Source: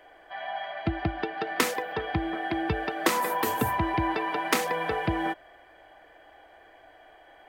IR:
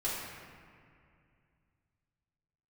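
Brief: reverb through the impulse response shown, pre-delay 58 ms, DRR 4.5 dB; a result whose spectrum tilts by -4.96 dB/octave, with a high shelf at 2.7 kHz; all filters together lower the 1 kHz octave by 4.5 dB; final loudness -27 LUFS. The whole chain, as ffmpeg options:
-filter_complex "[0:a]equalizer=f=1000:t=o:g=-4.5,highshelf=f=2700:g=-8,asplit=2[s0][s1];[1:a]atrim=start_sample=2205,adelay=58[s2];[s1][s2]afir=irnorm=-1:irlink=0,volume=0.299[s3];[s0][s3]amix=inputs=2:normalize=0,volume=1.33"

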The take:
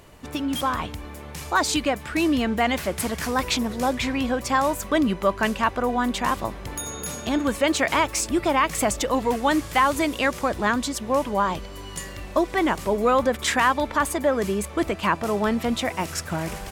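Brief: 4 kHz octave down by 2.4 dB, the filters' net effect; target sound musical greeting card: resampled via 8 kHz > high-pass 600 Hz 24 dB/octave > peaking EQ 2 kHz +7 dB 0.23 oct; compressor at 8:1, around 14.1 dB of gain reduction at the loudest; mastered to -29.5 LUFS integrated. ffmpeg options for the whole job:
-af "equalizer=f=4000:t=o:g=-3.5,acompressor=threshold=0.0282:ratio=8,aresample=8000,aresample=44100,highpass=f=600:w=0.5412,highpass=f=600:w=1.3066,equalizer=f=2000:t=o:w=0.23:g=7,volume=2.51"

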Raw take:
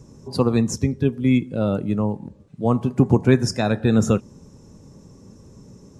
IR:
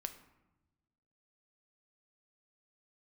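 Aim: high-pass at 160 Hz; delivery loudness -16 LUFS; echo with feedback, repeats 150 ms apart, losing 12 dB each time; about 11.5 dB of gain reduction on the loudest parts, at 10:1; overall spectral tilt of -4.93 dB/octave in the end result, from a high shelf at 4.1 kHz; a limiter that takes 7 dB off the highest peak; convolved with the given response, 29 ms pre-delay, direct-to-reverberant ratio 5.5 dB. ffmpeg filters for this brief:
-filter_complex "[0:a]highpass=160,highshelf=f=4100:g=8,acompressor=threshold=0.0708:ratio=10,alimiter=limit=0.106:level=0:latency=1,aecho=1:1:150|300|450:0.251|0.0628|0.0157,asplit=2[s0][s1];[1:a]atrim=start_sample=2205,adelay=29[s2];[s1][s2]afir=irnorm=-1:irlink=0,volume=0.708[s3];[s0][s3]amix=inputs=2:normalize=0,volume=5.01"

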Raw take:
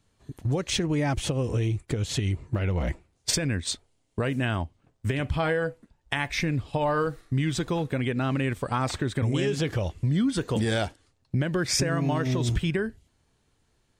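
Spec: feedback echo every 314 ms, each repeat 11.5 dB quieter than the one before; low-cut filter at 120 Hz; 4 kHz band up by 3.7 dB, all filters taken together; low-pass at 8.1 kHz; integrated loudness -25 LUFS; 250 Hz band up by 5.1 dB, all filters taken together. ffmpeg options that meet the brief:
-af "highpass=120,lowpass=8100,equalizer=f=250:t=o:g=7,equalizer=f=4000:t=o:g=5,aecho=1:1:314|628|942:0.266|0.0718|0.0194"

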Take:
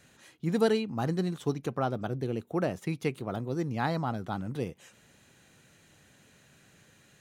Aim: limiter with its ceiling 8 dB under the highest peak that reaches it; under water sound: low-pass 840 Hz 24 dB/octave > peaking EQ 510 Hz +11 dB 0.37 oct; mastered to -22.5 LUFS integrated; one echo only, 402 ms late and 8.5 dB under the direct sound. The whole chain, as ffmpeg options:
-af "alimiter=limit=0.0794:level=0:latency=1,lowpass=f=840:w=0.5412,lowpass=f=840:w=1.3066,equalizer=f=510:t=o:w=0.37:g=11,aecho=1:1:402:0.376,volume=2.82"

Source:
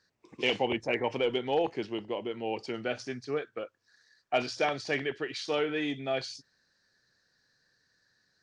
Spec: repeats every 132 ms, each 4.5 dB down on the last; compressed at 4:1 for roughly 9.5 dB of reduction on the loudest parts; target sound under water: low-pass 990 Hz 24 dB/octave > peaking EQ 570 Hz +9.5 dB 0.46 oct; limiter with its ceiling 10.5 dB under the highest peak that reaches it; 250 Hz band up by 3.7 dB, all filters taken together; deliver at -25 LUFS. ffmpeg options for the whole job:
-af "equalizer=f=250:t=o:g=4,acompressor=threshold=0.02:ratio=4,alimiter=level_in=2:limit=0.0631:level=0:latency=1,volume=0.501,lowpass=f=990:w=0.5412,lowpass=f=990:w=1.3066,equalizer=f=570:t=o:w=0.46:g=9.5,aecho=1:1:132|264|396|528|660|792|924|1056|1188:0.596|0.357|0.214|0.129|0.0772|0.0463|0.0278|0.0167|0.01,volume=3.98"

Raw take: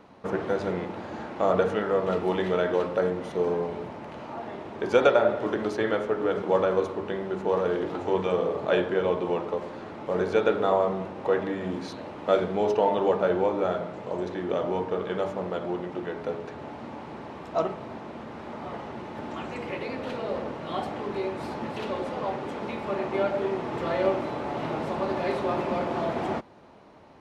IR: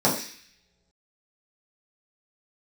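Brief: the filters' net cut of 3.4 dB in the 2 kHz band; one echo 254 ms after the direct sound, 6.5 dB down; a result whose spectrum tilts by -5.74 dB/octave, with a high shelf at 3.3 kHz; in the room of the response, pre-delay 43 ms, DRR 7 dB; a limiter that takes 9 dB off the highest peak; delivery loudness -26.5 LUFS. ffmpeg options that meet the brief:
-filter_complex "[0:a]equalizer=f=2000:t=o:g=-6,highshelf=f=3300:g=4,alimiter=limit=0.141:level=0:latency=1,aecho=1:1:254:0.473,asplit=2[s0][s1];[1:a]atrim=start_sample=2205,adelay=43[s2];[s1][s2]afir=irnorm=-1:irlink=0,volume=0.0668[s3];[s0][s3]amix=inputs=2:normalize=0,volume=1.12"

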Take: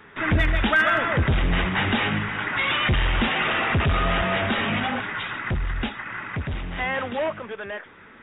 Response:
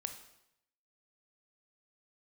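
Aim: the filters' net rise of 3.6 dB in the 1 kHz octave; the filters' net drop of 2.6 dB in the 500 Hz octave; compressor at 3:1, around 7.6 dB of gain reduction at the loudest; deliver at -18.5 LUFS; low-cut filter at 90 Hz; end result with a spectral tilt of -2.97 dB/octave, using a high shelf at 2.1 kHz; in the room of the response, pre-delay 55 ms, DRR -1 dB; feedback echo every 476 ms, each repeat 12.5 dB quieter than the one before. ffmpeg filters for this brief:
-filter_complex "[0:a]highpass=90,equalizer=f=500:t=o:g=-6.5,equalizer=f=1000:t=o:g=7.5,highshelf=f=2100:g=-3.5,acompressor=threshold=0.0562:ratio=3,aecho=1:1:476|952|1428:0.237|0.0569|0.0137,asplit=2[s0][s1];[1:a]atrim=start_sample=2205,adelay=55[s2];[s1][s2]afir=irnorm=-1:irlink=0,volume=1.33[s3];[s0][s3]amix=inputs=2:normalize=0,volume=1.88"

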